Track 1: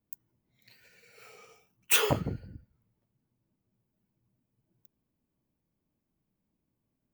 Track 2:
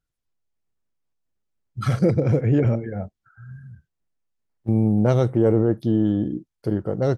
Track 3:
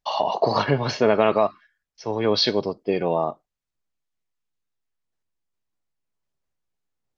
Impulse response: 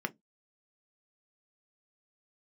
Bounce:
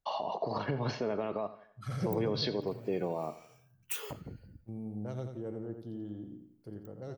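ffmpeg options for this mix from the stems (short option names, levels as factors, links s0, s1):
-filter_complex "[0:a]acompressor=threshold=0.0224:ratio=4,adelay=2000,volume=0.473[s0];[1:a]volume=0.251,afade=t=out:st=2.2:d=0.31:silence=0.298538,asplit=2[s1][s2];[s2]volume=0.447[s3];[2:a]lowpass=f=1400:p=1,alimiter=limit=0.126:level=0:latency=1:release=134,volume=0.631,asplit=3[s4][s5][s6];[s5]volume=0.15[s7];[s6]apad=whole_len=316375[s8];[s1][s8]sidechaincompress=threshold=0.00398:ratio=4:attack=9.5:release=489[s9];[s3][s7]amix=inputs=2:normalize=0,aecho=0:1:86|172|258|344|430|516:1|0.4|0.16|0.064|0.0256|0.0102[s10];[s0][s9][s4][s10]amix=inputs=4:normalize=0,highshelf=f=5300:g=4.5,acrossover=split=460|3000[s11][s12][s13];[s12]acompressor=threshold=0.01:ratio=1.5[s14];[s11][s14][s13]amix=inputs=3:normalize=0"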